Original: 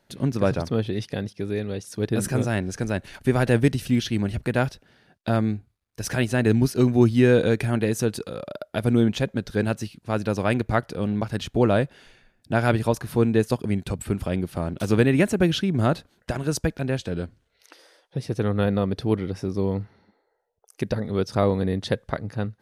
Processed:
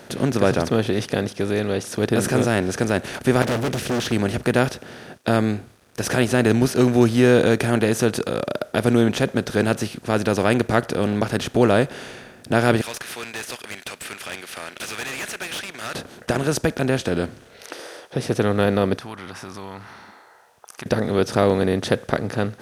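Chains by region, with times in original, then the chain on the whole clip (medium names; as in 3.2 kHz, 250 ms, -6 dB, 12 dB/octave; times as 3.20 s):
3.42–4.12 s: overload inside the chain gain 26 dB + loudspeaker Doppler distortion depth 0.97 ms
12.81–15.95 s: resonant high-pass 2.2 kHz, resonance Q 1.8 + valve stage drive 34 dB, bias 0.35
18.97–20.86 s: resonant low shelf 700 Hz -13 dB, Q 3 + compression 2.5:1, threshold -51 dBFS
whole clip: spectral levelling over time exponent 0.6; high-pass 130 Hz 6 dB/octave; trim +1 dB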